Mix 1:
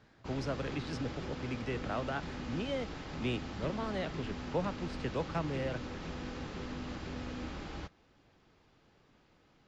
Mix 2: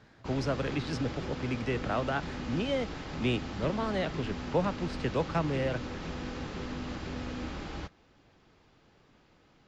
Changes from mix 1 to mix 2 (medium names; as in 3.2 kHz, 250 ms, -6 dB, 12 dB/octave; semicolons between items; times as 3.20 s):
speech +5.5 dB; background +3.5 dB